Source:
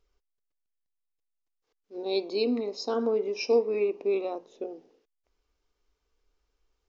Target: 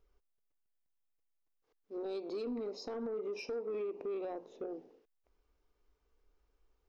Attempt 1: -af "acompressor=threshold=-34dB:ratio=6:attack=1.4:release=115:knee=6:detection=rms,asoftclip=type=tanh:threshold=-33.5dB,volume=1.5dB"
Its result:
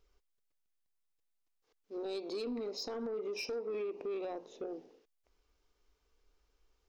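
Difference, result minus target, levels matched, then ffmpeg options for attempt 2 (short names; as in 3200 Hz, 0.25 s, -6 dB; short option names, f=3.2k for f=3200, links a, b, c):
8000 Hz band +7.5 dB
-af "acompressor=threshold=-34dB:ratio=6:attack=1.4:release=115:knee=6:detection=rms,equalizer=f=6k:t=o:w=2.8:g=-9,asoftclip=type=tanh:threshold=-33.5dB,volume=1.5dB"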